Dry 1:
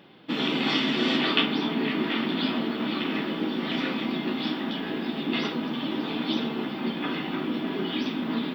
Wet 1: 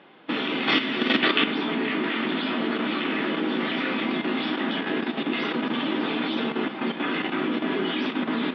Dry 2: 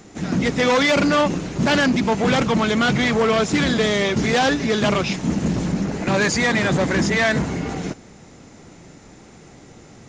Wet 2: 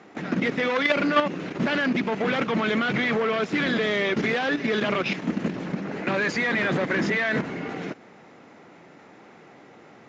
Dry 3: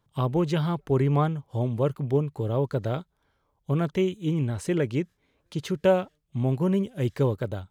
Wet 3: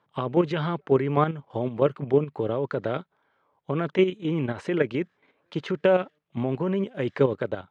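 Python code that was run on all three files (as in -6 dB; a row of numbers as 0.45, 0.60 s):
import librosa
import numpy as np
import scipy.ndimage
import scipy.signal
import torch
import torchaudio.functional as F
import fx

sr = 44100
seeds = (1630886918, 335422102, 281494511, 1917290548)

y = fx.low_shelf(x, sr, hz=350.0, db=-11.0)
y = fx.level_steps(y, sr, step_db=9)
y = fx.dynamic_eq(y, sr, hz=870.0, q=1.2, threshold_db=-45.0, ratio=4.0, max_db=-7)
y = fx.bandpass_edges(y, sr, low_hz=160.0, high_hz=2300.0)
y = y * 10.0 ** (-26 / 20.0) / np.sqrt(np.mean(np.square(y)))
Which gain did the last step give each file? +12.5, +6.5, +13.0 dB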